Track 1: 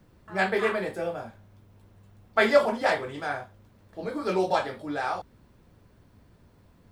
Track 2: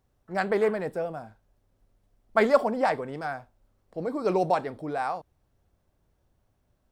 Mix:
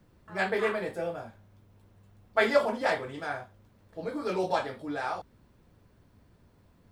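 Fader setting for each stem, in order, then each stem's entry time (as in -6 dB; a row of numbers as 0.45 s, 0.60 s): -3.5 dB, -13.0 dB; 0.00 s, 0.00 s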